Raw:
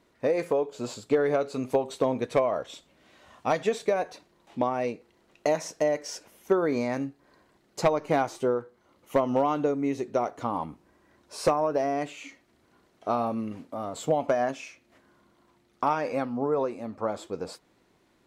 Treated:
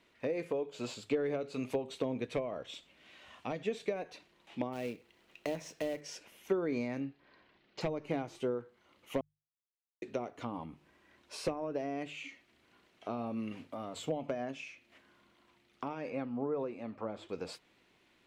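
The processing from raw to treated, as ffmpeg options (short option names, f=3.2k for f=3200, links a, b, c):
-filter_complex "[0:a]asplit=3[a][b][c];[a]afade=t=out:st=4.72:d=0.02[d];[b]acrusher=bits=3:mode=log:mix=0:aa=0.000001,afade=t=in:st=4.72:d=0.02,afade=t=out:st=6:d=0.02[e];[c]afade=t=in:st=6:d=0.02[f];[d][e][f]amix=inputs=3:normalize=0,asettb=1/sr,asplit=3[g][h][i];[g]atrim=end=7.004[j];[h]atrim=start=7:end=7.81,asetpts=PTS-STARTPTS,afade=t=in:d=0.004:c=qsin,afade=t=out:st=0.806:d=0.004:c=qsin,lowpass=f=4.7k:w=0.5412,lowpass=f=4.7k:w=1.3066[k];[i]atrim=start=7.806[l];[j][k]acrossfade=d=0.004:c1=hsin:c2=qsin[m];[m][l]acrossfade=d=0.004:c1=qsin:c2=hsin,asettb=1/sr,asplit=3[n][o][p];[n]atrim=end=16.104[q];[o]atrim=start=16.1:end=17.29,asetpts=PTS-STARTPTS,afade=t=in:d=0.004:c=qsin,afade=t=out:st=1.186:d=0.004:c=qsin,lowpass=f=2.4k:p=1[r];[p]atrim=start=17.286[s];[q][r]acrossfade=d=0.004:c1=hsin:c2=qsin[t];[t][s]acrossfade=d=0.004:c1=qsin:c2=hsin,asplit=3[u][v][w];[u]atrim=end=9.21,asetpts=PTS-STARTPTS,afade=t=out:st=9.206:d=0.004:c=hsin[x];[v]atrim=start=9.21:end=10.02,asetpts=PTS-STARTPTS,volume=0[y];[w]atrim=start=10.02,asetpts=PTS-STARTPTS,afade=t=in:d=0.004:c=hsin[z];[x][y][z]concat=n=3:v=0:a=1,equalizer=f=2.7k:t=o:w=1.3:g=11.5,bandreject=f=50:t=h:w=6,bandreject=f=100:t=h:w=6,bandreject=f=150:t=h:w=6,acrossover=split=470[aa][ab];[ab]acompressor=threshold=-36dB:ratio=10[ac];[aa][ac]amix=inputs=2:normalize=0,volume=-6dB"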